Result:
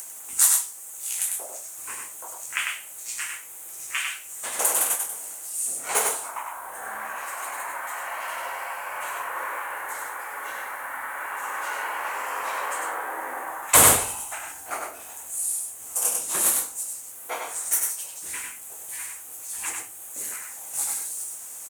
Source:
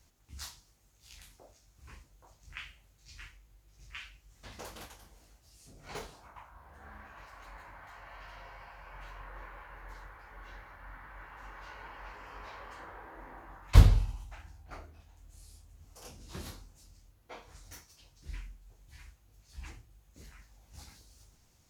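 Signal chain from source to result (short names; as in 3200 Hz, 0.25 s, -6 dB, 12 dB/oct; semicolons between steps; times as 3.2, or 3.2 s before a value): HPF 570 Hz 12 dB/oct; resonant high shelf 6500 Hz +11.5 dB, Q 3; upward compressor, threshold -52 dBFS; echo 99 ms -3.5 dB; maximiser +19 dB; gain -1 dB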